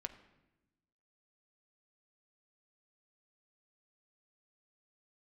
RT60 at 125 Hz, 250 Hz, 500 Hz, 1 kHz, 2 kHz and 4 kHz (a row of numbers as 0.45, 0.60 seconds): 1.4, 1.4, 1.1, 0.90, 0.90, 0.75 seconds